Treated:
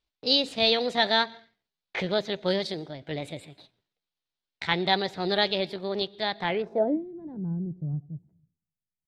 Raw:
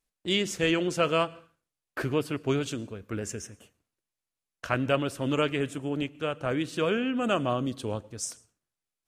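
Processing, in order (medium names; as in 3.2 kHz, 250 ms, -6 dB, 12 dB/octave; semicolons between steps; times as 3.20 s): pitch shift +5.5 st; low-pass sweep 4.1 kHz -> 160 Hz, 6.43–7.06 s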